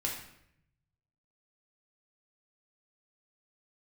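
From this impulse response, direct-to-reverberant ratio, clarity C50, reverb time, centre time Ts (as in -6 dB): -2.0 dB, 4.0 dB, 0.75 s, 38 ms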